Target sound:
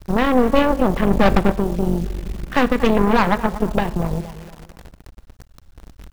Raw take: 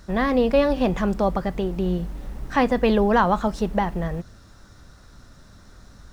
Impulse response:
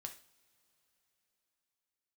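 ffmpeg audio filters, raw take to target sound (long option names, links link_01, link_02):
-filter_complex "[0:a]afwtdn=0.0282,equalizer=frequency=2900:width_type=o:width=0.33:gain=9.5,asplit=2[link_01][link_02];[link_02]adelay=234,lowpass=frequency=2800:poles=1,volume=-15.5dB,asplit=2[link_03][link_04];[link_04]adelay=234,lowpass=frequency=2800:poles=1,volume=0.43,asplit=2[link_05][link_06];[link_06]adelay=234,lowpass=frequency=2800:poles=1,volume=0.43,asplit=2[link_07][link_08];[link_08]adelay=234,lowpass=frequency=2800:poles=1,volume=0.43[link_09];[link_01][link_03][link_05][link_07][link_09]amix=inputs=5:normalize=0,asplit=3[link_10][link_11][link_12];[link_10]afade=type=out:start_time=1.1:duration=0.02[link_13];[link_11]aeval=exprs='0.316*(cos(1*acos(clip(val(0)/0.316,-1,1)))-cos(1*PI/2))+0.0631*(cos(8*acos(clip(val(0)/0.316,-1,1)))-cos(8*PI/2))':channel_layout=same,afade=type=in:start_time=1.1:duration=0.02,afade=type=out:start_time=1.52:duration=0.02[link_14];[link_12]afade=type=in:start_time=1.52:duration=0.02[link_15];[link_13][link_14][link_15]amix=inputs=3:normalize=0,asplit=2[link_16][link_17];[link_17]acompressor=threshold=-28dB:ratio=12,volume=1dB[link_18];[link_16][link_18]amix=inputs=2:normalize=0,aeval=exprs='0.631*(cos(1*acos(clip(val(0)/0.631,-1,1)))-cos(1*PI/2))+0.0708*(cos(3*acos(clip(val(0)/0.631,-1,1)))-cos(3*PI/2))+0.126*(cos(4*acos(clip(val(0)/0.631,-1,1)))-cos(4*PI/2))+0.01*(cos(5*acos(clip(val(0)/0.631,-1,1)))-cos(5*PI/2))+0.0282*(cos(8*acos(clip(val(0)/0.631,-1,1)))-cos(8*PI/2))':channel_layout=same,asplit=2[link_19][link_20];[1:a]atrim=start_sample=2205,asetrate=42336,aresample=44100,lowpass=4500[link_21];[link_20][link_21]afir=irnorm=-1:irlink=0,volume=-0.5dB[link_22];[link_19][link_22]amix=inputs=2:normalize=0,acrusher=bits=7:dc=4:mix=0:aa=0.000001,volume=-2.5dB"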